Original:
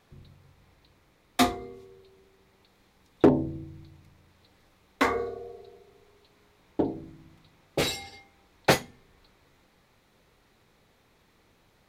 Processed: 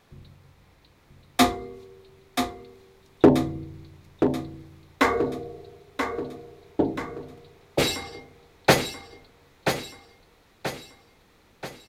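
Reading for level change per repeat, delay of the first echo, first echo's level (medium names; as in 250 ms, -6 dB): -6.5 dB, 982 ms, -7.0 dB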